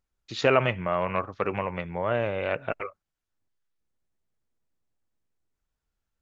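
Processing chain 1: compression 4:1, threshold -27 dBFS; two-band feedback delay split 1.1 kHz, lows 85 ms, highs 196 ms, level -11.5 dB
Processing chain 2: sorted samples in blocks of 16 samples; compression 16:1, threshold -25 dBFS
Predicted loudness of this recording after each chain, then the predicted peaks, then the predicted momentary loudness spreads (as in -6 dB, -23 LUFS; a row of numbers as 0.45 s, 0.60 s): -33.0 LUFS, -32.0 LUFS; -12.5 dBFS, -11.0 dBFS; 8 LU, 5 LU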